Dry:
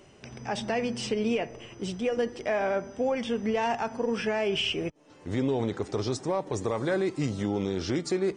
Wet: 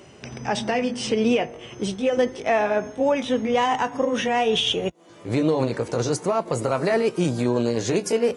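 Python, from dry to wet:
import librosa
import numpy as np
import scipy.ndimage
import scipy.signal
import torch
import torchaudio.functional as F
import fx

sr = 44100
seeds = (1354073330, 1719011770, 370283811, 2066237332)

y = fx.pitch_glide(x, sr, semitones=3.5, runs='starting unshifted')
y = scipy.signal.sosfilt(scipy.signal.butter(2, 58.0, 'highpass', fs=sr, output='sos'), y)
y = y * 10.0 ** (7.5 / 20.0)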